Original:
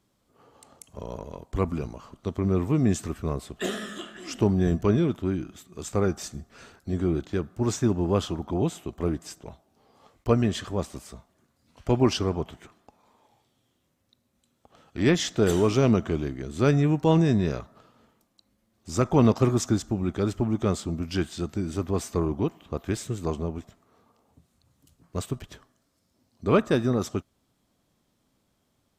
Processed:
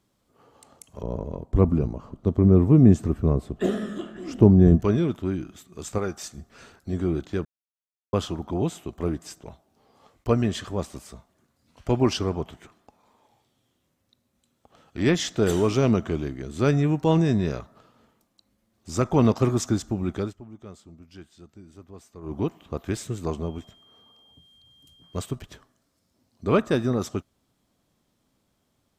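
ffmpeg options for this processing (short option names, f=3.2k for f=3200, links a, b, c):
-filter_complex "[0:a]asettb=1/sr,asplit=3[a][b][c];[a]atrim=end=1.024[d];[b]atrim=start=1.02:end=4.8,asetpts=PTS-STARTPTS,afade=t=in:d=0.004:c=qsin,afade=t=out:st=3.776:d=0.004:c=qsin,tiltshelf=f=970:g=9[e];[c]atrim=start=4.796[f];[d][e]acrossfade=d=0.004:c1=hsin:c2=qsin[g];[g][f]acrossfade=d=0.004:c1=qsin:c2=hsin,asettb=1/sr,asplit=3[h][i][j];[h]atrim=end=5.984[k];[i]atrim=start=5.98:end=6.38,asetpts=PTS-STARTPTS,afade=t=in:d=0.004:c=qsin,afade=t=out:st=0.396:d=0.004:c=qsin,lowshelf=f=460:g=-7.5[l];[j]atrim=start=6.376[m];[k][l]acrossfade=d=0.004:c1=hsin:c2=qsin[n];[n][m]acrossfade=d=0.004:c1=qsin:c2=hsin,asettb=1/sr,asplit=3[o][p][q];[o]atrim=end=23.434[r];[p]atrim=start=23.43:end=25.33,asetpts=PTS-STARTPTS,afade=t=in:d=0.004:c=qsin,afade=t=out:st=1.896:d=0.004:c=qsin,aeval=exprs='val(0)+0.00178*sin(2*PI*3200*n/s)':c=same[s];[q]atrim=start=25.326[t];[r][s]acrossfade=d=0.004:c1=hsin:c2=qsin[u];[u][t]acrossfade=d=0.004:c1=qsin:c2=hsin,asplit=5[v][w][x][y][z];[v]atrim=end=7.45,asetpts=PTS-STARTPTS,afade=t=out:st=7.446:d=0.004:c=hsin[aa];[w]atrim=start=7.45:end=8.13,asetpts=PTS-STARTPTS,volume=0[ab];[x]atrim=start=8.13:end=20.34,asetpts=PTS-STARTPTS,afade=t=in:d=0.004:c=hsin,afade=t=out:st=12.05:d=0.16:silence=0.125893[ac];[y]atrim=start=20.34:end=22.22,asetpts=PTS-STARTPTS,volume=-18dB[ad];[z]atrim=start=22.22,asetpts=PTS-STARTPTS,afade=t=in:d=0.16:silence=0.125893[ae];[aa][ab][ac][ad][ae]concat=n=5:v=0:a=1"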